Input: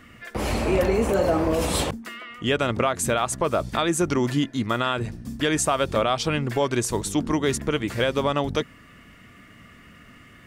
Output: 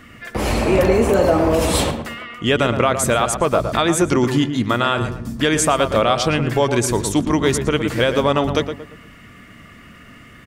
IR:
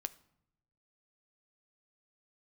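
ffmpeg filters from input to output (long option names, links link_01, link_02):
-filter_complex "[0:a]asplit=2[link_01][link_02];[link_02]adelay=115,lowpass=frequency=1900:poles=1,volume=-7.5dB,asplit=2[link_03][link_04];[link_04]adelay=115,lowpass=frequency=1900:poles=1,volume=0.37,asplit=2[link_05][link_06];[link_06]adelay=115,lowpass=frequency=1900:poles=1,volume=0.37,asplit=2[link_07][link_08];[link_08]adelay=115,lowpass=frequency=1900:poles=1,volume=0.37[link_09];[link_01][link_03][link_05][link_07][link_09]amix=inputs=5:normalize=0,volume=5.5dB"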